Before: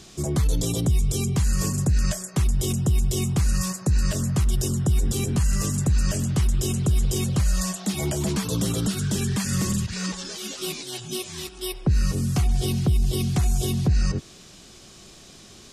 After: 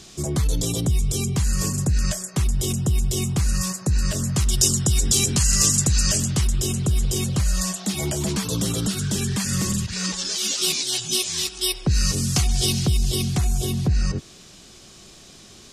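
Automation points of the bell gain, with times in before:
bell 5800 Hz 2.5 oct
4.18 s +3.5 dB
4.63 s +15 dB
5.94 s +15 dB
6.69 s +4 dB
9.88 s +4 dB
10.48 s +13 dB
12.92 s +13 dB
13.49 s +1.5 dB

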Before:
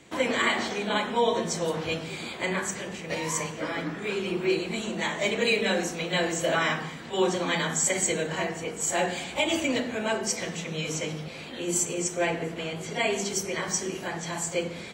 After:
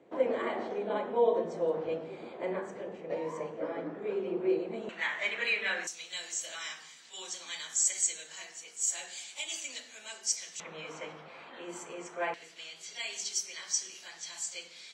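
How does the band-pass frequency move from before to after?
band-pass, Q 1.6
500 Hz
from 4.89 s 1800 Hz
from 5.87 s 6300 Hz
from 10.6 s 1100 Hz
from 12.34 s 5100 Hz

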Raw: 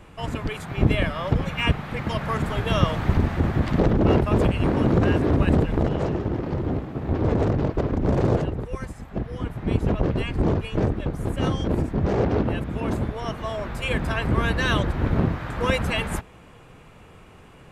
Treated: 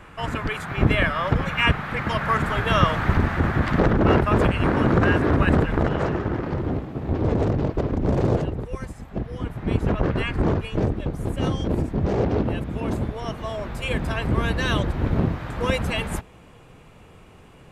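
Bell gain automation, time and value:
bell 1500 Hz 1.3 oct
6.31 s +9 dB
6.9 s -1.5 dB
9.35 s -1.5 dB
10.27 s +9 dB
10.84 s -2.5 dB

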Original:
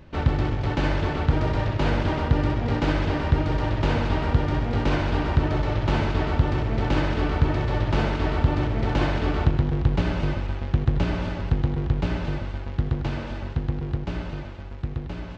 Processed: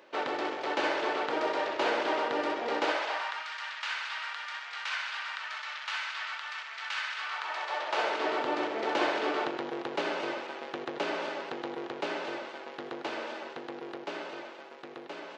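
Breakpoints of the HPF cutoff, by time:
HPF 24 dB/oct
2.81 s 390 Hz
3.5 s 1300 Hz
7.14 s 1300 Hz
8.31 s 370 Hz

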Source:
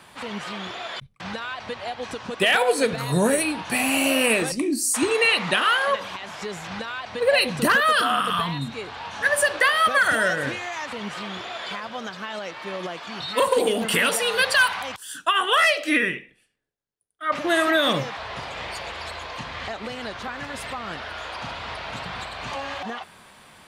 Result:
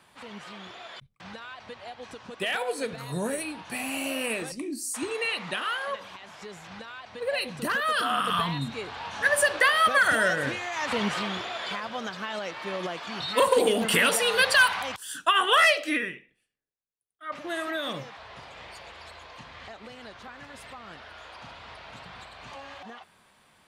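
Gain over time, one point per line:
7.64 s -10 dB
8.35 s -2 dB
10.71 s -2 dB
10.96 s +6 dB
11.51 s -1 dB
15.71 s -1 dB
16.16 s -11.5 dB

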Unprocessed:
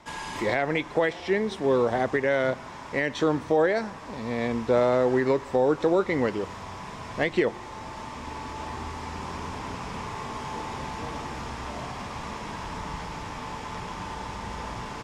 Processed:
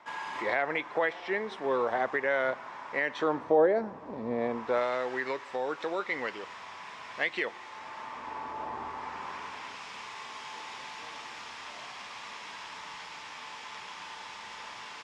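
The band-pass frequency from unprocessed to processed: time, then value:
band-pass, Q 0.78
3.15 s 1300 Hz
3.79 s 410 Hz
4.32 s 410 Hz
4.88 s 2300 Hz
7.69 s 2300 Hz
8.69 s 760 Hz
9.82 s 3200 Hz

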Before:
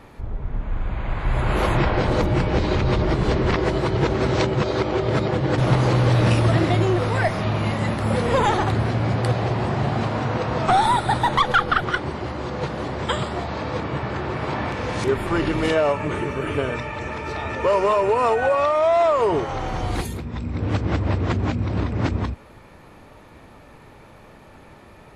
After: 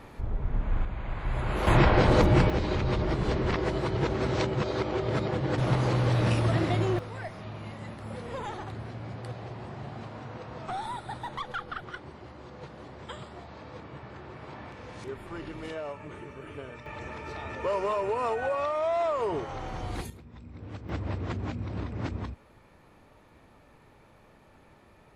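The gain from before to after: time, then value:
-2 dB
from 0.85 s -8.5 dB
from 1.67 s -0.5 dB
from 2.5 s -7.5 dB
from 6.99 s -17.5 dB
from 16.86 s -10 dB
from 20.1 s -18.5 dB
from 20.89 s -11 dB

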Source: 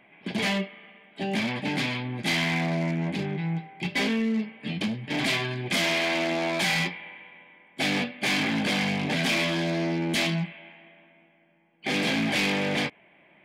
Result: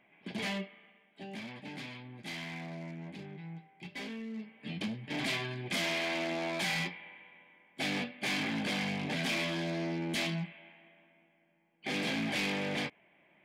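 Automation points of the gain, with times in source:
0.72 s -9.5 dB
1.32 s -16 dB
4.28 s -16 dB
4.74 s -8 dB

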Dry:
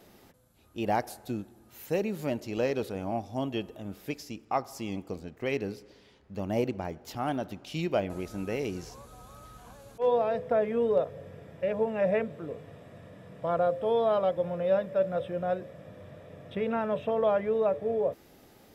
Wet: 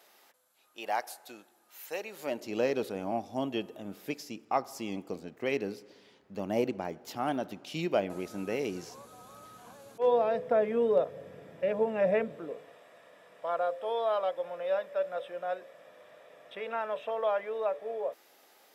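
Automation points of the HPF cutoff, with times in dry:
2.1 s 770 Hz
2.54 s 190 Hz
12.3 s 190 Hz
12.81 s 670 Hz

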